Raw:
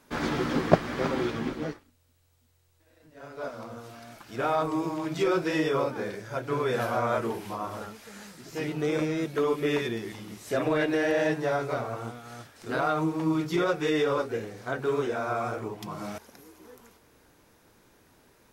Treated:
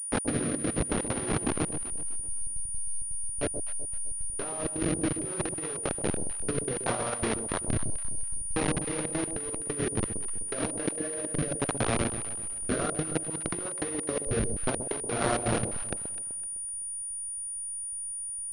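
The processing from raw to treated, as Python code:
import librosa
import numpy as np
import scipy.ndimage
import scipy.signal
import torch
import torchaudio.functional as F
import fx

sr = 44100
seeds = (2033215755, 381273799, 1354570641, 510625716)

p1 = fx.delta_hold(x, sr, step_db=-25.0)
p2 = fx.rotary_switch(p1, sr, hz=0.65, then_hz=5.0, switch_at_s=15.12)
p3 = fx.step_gate(p2, sr, bpm=164, pattern='.x.xxx.xx', floor_db=-60.0, edge_ms=4.5)
p4 = fx.low_shelf(p3, sr, hz=100.0, db=-5.5)
p5 = np.sign(p4) * np.maximum(np.abs(p4) - 10.0 ** (-48.5 / 20.0), 0.0)
p6 = p4 + (p5 * 10.0 ** (-4.0 / 20.0))
p7 = fx.over_compress(p6, sr, threshold_db=-31.0, ratio=-0.5)
p8 = fx.echo_alternate(p7, sr, ms=127, hz=800.0, feedback_pct=57, wet_db=-8.0)
p9 = fx.pwm(p8, sr, carrier_hz=9500.0)
y = p9 * 10.0 ** (1.5 / 20.0)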